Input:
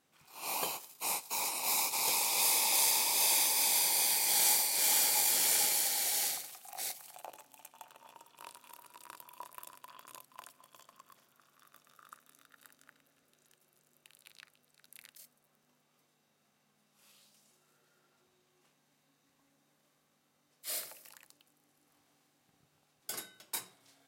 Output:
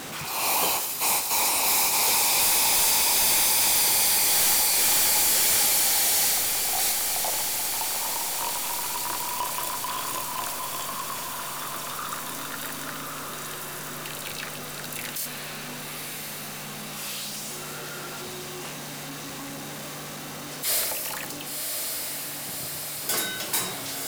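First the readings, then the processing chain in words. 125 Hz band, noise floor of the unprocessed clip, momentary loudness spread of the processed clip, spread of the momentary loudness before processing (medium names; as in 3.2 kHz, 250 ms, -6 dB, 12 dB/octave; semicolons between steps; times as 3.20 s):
no reading, -75 dBFS, 16 LU, 16 LU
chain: one-sided wavefolder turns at -26.5 dBFS; echo that smears into a reverb 1083 ms, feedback 45%, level -14 dB; power-law waveshaper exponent 0.35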